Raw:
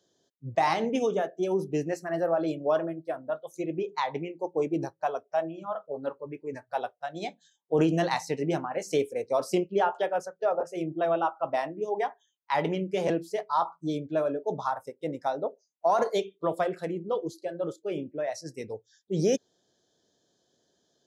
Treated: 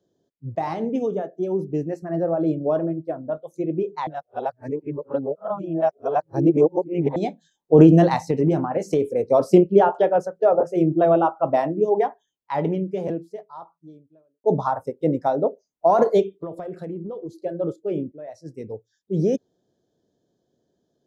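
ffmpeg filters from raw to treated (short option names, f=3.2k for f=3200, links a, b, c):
-filter_complex "[0:a]asettb=1/sr,asplit=3[a][b][c];[a]atrim=end=2.024[d];[b]atrim=start=2.02:end=3.38,asetpts=PTS-STARTPTS,afade=t=in:d=0.004:c=qsin,afade=t=out:st=1.356:d=0.004:c=qsin,lowshelf=f=420:g=5.5[e];[c]atrim=start=3.376[f];[d][e]acrossfade=d=0.004:c1=hsin:c2=qsin[g];[g][f]acrossfade=d=0.004:c1=qsin:c2=hsin,asettb=1/sr,asplit=3[h][i][j];[h]atrim=end=8.164[k];[i]atrim=start=8.16:end=9.3,asetpts=PTS-STARTPTS,afade=t=in:d=0.004:c=qsin,afade=t=out:st=1.136:d=0.004:c=qsin,acompressor=threshold=-27dB:ratio=6:attack=3.2:release=140:knee=1:detection=peak[l];[j]atrim=start=9.296[m];[k][l]acrossfade=d=0.004:c1=hsin:c2=qsin[n];[n][m]acrossfade=d=0.004:c1=qsin:c2=hsin,asettb=1/sr,asplit=3[o][p][q];[o]atrim=end=16.404[r];[p]atrim=start=16.4:end=17.4,asetpts=PTS-STARTPTS,afade=t=in:d=0.004:c=qsin,afade=t=out:st=0.996:d=0.004:c=qsin,acompressor=threshold=-39dB:ratio=4:attack=3.2:release=140:knee=1:detection=peak[s];[q]atrim=start=17.396[t];[r][s]acrossfade=d=0.004:c1=hsin:c2=qsin[u];[u][t]acrossfade=d=0.004:c1=qsin:c2=hsin,asplit=5[v][w][x][y][z];[v]atrim=end=4.072[aa];[w]atrim=start=4.068:end=7.162,asetpts=PTS-STARTPTS,areverse[ab];[x]atrim=start=7.158:end=14.44,asetpts=PTS-STARTPTS,afade=t=out:st=4.642:d=2.64:c=qua[ac];[y]atrim=start=14.44:end=18.12,asetpts=PTS-STARTPTS,afade=t=in:d=0.004:c=hsin,afade=t=out:st=3.676:d=0.004:c=hsin:silence=0.199526[ad];[z]atrim=start=18.12,asetpts=PTS-STARTPTS,afade=t=in:d=0.63:silence=0.199526[ae];[aa][ab]acrossfade=d=0.004:c1=hsin:c2=hsin[af];[ac][ad][ae]concat=n=3:v=0:a=1[ag];[af][ag]acrossfade=d=0.004:c1=hsin:c2=hsin,dynaudnorm=f=300:g=31:m=11dB,tiltshelf=f=860:g=9,volume=-3dB"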